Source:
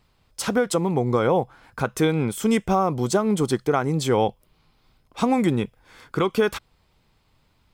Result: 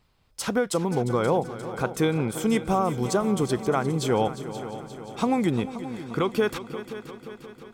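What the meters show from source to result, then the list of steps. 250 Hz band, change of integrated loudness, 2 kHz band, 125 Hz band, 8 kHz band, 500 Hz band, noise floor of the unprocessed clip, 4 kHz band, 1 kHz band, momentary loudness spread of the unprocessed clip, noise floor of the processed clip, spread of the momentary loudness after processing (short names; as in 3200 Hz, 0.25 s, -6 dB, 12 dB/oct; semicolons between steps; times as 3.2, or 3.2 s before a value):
-2.5 dB, -3.0 dB, -2.5 dB, -2.5 dB, -2.5 dB, -2.5 dB, -64 dBFS, -2.5 dB, -2.5 dB, 9 LU, -56 dBFS, 14 LU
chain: multi-head echo 0.176 s, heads second and third, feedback 59%, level -14 dB; gain -3 dB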